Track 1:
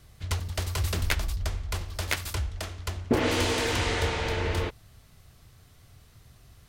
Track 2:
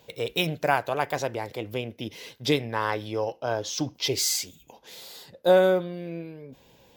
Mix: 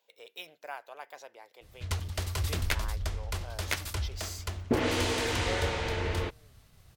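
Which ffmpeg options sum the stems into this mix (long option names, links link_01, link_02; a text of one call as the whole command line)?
ffmpeg -i stem1.wav -i stem2.wav -filter_complex "[0:a]agate=range=-33dB:threshold=-52dB:ratio=3:detection=peak,adelay=1600,volume=-3dB[link_01];[1:a]highpass=600,volume=-16.5dB[link_02];[link_01][link_02]amix=inputs=2:normalize=0" out.wav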